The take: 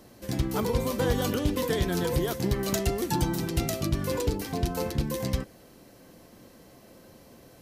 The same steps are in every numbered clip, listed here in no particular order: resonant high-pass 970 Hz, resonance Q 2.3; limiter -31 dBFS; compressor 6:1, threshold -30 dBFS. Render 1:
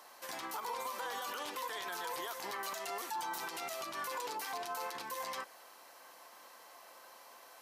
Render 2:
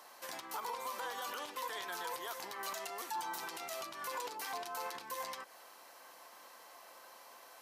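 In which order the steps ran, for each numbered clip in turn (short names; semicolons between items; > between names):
resonant high-pass > compressor > limiter; compressor > resonant high-pass > limiter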